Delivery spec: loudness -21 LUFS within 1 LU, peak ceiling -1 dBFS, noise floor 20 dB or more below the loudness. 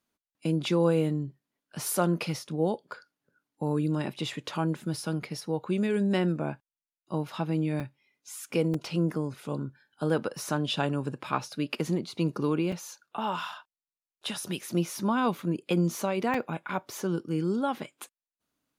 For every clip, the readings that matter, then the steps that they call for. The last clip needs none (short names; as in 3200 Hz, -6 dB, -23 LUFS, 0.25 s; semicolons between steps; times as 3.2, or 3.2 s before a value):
dropouts 4; longest dropout 3.8 ms; loudness -30.0 LUFS; peak -12.5 dBFS; loudness target -21.0 LUFS
-> interpolate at 7.8/8.74/12.72/16.34, 3.8 ms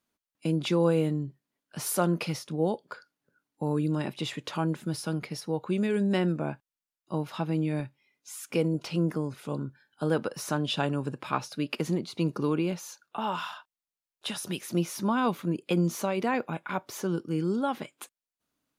dropouts 0; loudness -30.0 LUFS; peak -12.5 dBFS; loudness target -21.0 LUFS
-> gain +9 dB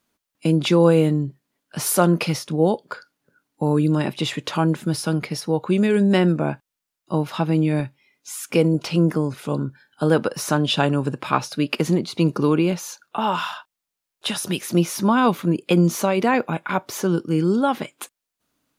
loudness -21.0 LUFS; peak -3.5 dBFS; noise floor -84 dBFS